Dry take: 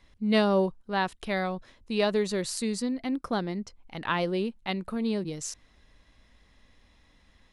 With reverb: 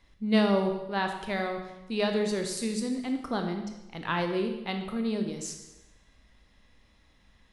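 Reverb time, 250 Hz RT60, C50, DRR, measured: 1.0 s, 1.0 s, 6.5 dB, 4.0 dB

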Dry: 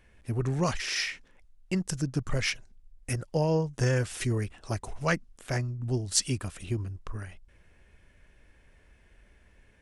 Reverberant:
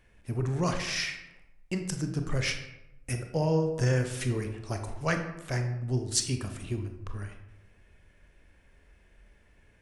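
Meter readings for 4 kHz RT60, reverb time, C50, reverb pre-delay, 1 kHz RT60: 0.55 s, 0.90 s, 7.5 dB, 23 ms, 0.85 s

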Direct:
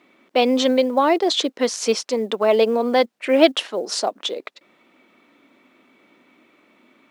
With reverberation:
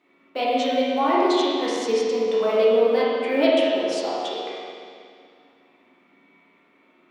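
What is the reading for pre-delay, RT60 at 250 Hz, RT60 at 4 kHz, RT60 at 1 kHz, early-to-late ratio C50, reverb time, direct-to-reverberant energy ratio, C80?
11 ms, 2.2 s, 2.1 s, 2.2 s, -4.0 dB, 2.2 s, -9.0 dB, -1.5 dB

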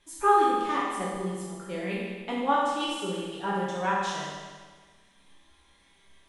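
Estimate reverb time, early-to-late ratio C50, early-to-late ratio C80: 1.5 s, -1.5 dB, 1.0 dB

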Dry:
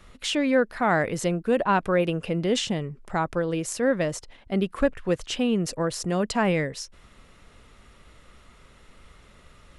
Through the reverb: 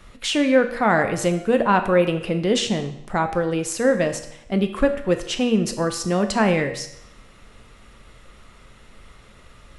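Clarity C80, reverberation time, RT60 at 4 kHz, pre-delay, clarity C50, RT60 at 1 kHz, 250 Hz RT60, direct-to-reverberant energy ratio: 12.5 dB, 0.80 s, 0.75 s, 9 ms, 10.5 dB, 0.80 s, 0.80 s, 6.5 dB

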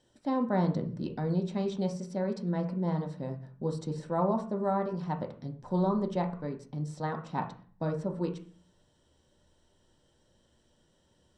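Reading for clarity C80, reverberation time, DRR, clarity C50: 16.0 dB, 0.45 s, 3.0 dB, 10.5 dB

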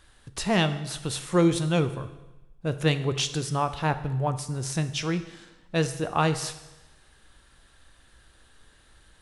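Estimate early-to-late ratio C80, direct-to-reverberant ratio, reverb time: 14.5 dB, 10.0 dB, 1.0 s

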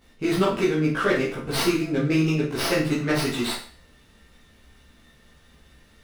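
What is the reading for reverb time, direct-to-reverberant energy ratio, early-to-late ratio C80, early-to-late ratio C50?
0.45 s, -10.0 dB, 9.5 dB, 5.0 dB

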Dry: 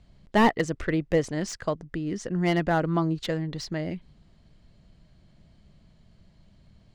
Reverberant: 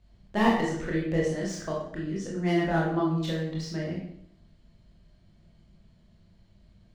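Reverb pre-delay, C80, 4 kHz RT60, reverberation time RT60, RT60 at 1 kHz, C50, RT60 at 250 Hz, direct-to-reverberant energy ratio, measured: 19 ms, 6.0 dB, 0.55 s, 0.70 s, 0.65 s, 2.0 dB, 0.75 s, -4.0 dB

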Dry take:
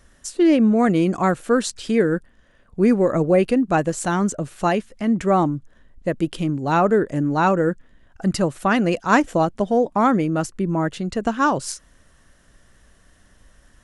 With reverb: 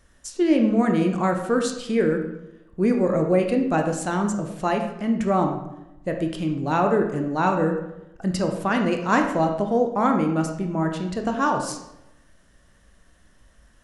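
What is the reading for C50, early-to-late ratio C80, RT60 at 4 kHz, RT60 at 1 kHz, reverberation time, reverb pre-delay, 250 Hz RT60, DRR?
6.5 dB, 8.5 dB, 0.65 s, 0.85 s, 0.90 s, 18 ms, 0.95 s, 3.5 dB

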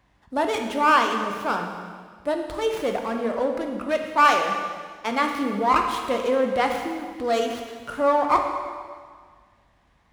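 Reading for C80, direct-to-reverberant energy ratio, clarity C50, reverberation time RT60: 6.5 dB, 3.0 dB, 5.0 dB, 1.8 s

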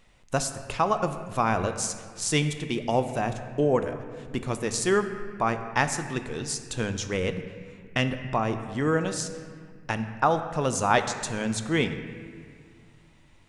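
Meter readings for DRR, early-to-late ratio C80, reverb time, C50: 8.0 dB, 10.0 dB, 2.0 s, 9.5 dB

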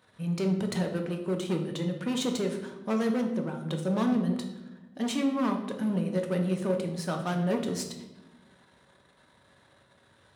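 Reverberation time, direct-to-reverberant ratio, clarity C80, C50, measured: 1.0 s, 3.0 dB, 10.0 dB, 7.5 dB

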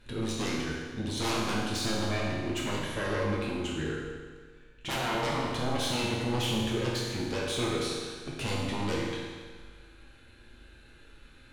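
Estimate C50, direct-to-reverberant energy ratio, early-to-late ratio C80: 0.0 dB, -5.0 dB, 2.0 dB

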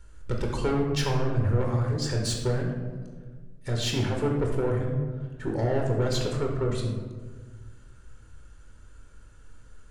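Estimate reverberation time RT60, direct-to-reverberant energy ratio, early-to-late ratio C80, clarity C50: 1.5 s, 0.0 dB, 5.5 dB, 3.5 dB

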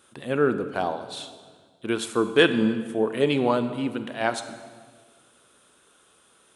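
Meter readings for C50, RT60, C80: 11.0 dB, 1.7 s, 12.0 dB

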